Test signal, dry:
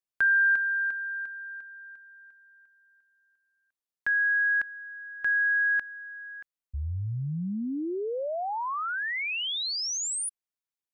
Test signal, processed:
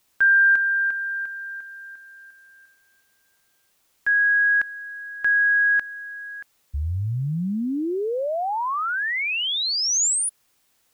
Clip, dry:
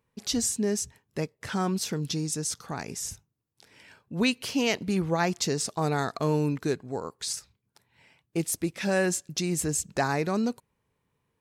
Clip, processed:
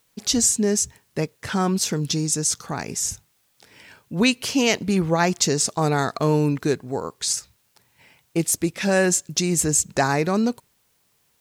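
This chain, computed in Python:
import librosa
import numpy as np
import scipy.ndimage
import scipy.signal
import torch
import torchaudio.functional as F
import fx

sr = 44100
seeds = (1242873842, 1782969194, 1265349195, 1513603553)

y = fx.gate_hold(x, sr, open_db=-52.0, close_db=-58.0, hold_ms=58.0, range_db=-6, attack_ms=9.8, release_ms=39.0)
y = fx.dynamic_eq(y, sr, hz=6900.0, q=2.1, threshold_db=-45.0, ratio=8.0, max_db=5)
y = fx.quant_dither(y, sr, seeds[0], bits=12, dither='triangular')
y = y * librosa.db_to_amplitude(6.0)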